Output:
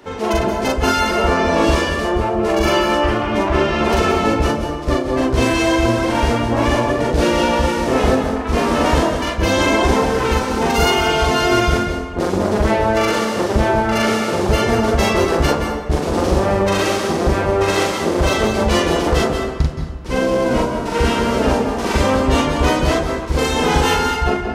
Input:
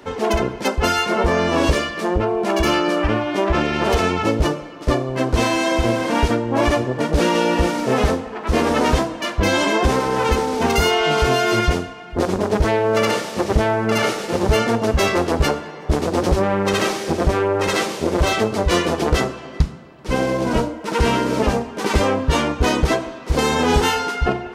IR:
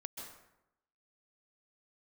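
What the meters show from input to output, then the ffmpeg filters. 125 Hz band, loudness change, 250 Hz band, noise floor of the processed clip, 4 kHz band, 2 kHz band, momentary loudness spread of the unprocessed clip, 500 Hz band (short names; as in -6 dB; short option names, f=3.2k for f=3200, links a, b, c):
+2.0 dB, +2.5 dB, +2.5 dB, -24 dBFS, +2.0 dB, +2.0 dB, 5 LU, +2.0 dB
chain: -filter_complex "[0:a]asplit=2[a][b];[1:a]atrim=start_sample=2205,adelay=42[c];[b][c]afir=irnorm=-1:irlink=0,volume=4dB[d];[a][d]amix=inputs=2:normalize=0,volume=-1.5dB"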